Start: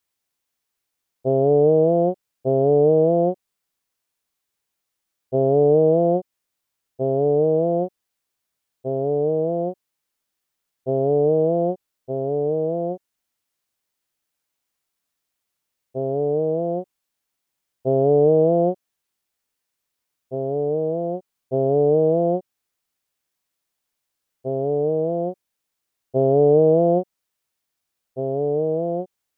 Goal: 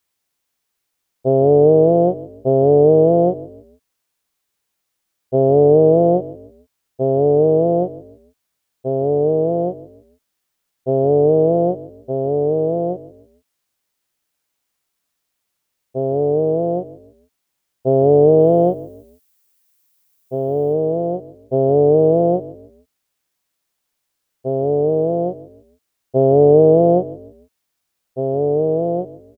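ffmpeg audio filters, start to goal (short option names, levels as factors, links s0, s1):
-filter_complex "[0:a]asettb=1/sr,asplit=3[s0][s1][s2];[s0]atrim=end=18.404[s3];[s1]atrim=start=18.4:end=20.73,asetpts=PTS-STARTPTS,afade=t=in:d=0.004:c=qsin,afade=t=out:st=2.326:d=0.004:c=qsin,aemphasis=mode=production:type=50kf[s4];[s2]atrim=start=20.726[s5];[s3][s4]acrossfade=d=0.004:c1=hsin:c2=qsin[s6];[s6][s5]acrossfade=d=0.004:c1=qsin:c2=hsin,asplit=4[s7][s8][s9][s10];[s8]adelay=150,afreqshift=-37,volume=0.141[s11];[s9]adelay=300,afreqshift=-74,volume=0.0495[s12];[s10]adelay=450,afreqshift=-111,volume=0.0174[s13];[s7][s11][s12][s13]amix=inputs=4:normalize=0,volume=1.68"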